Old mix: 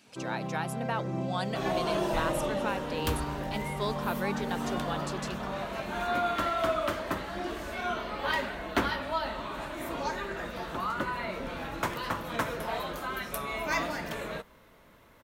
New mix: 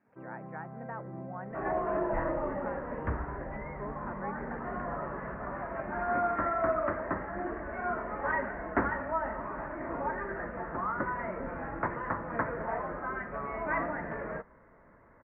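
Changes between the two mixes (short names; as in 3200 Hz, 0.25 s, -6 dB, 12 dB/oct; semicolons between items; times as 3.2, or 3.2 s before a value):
speech -8.5 dB; first sound -8.5 dB; master: add elliptic low-pass 1900 Hz, stop band 50 dB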